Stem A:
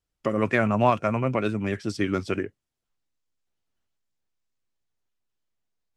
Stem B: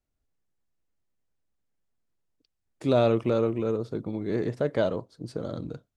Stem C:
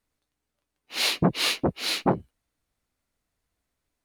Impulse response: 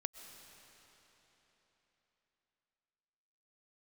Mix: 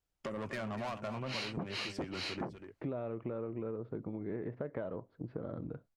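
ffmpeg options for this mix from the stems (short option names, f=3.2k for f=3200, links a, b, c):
-filter_complex "[0:a]equalizer=f=750:w=1.5:g=3.5,asoftclip=type=tanh:threshold=-23dB,volume=-3.5dB,asplit=2[a][b];[b]volume=-11dB[c];[1:a]agate=range=-33dB:threshold=-46dB:ratio=3:detection=peak,lowpass=f=2.2k:w=0.5412,lowpass=f=2.2k:w=1.3066,volume=2dB[d];[2:a]lowpass=4.7k,bandreject=f=3.5k:w=6.4,adelay=350,volume=0dB[e];[d][e]amix=inputs=2:normalize=0,acompressor=threshold=-22dB:ratio=6,volume=0dB[f];[c]aecho=0:1:243:1[g];[a][f][g]amix=inputs=3:normalize=0,acompressor=threshold=-40dB:ratio=3"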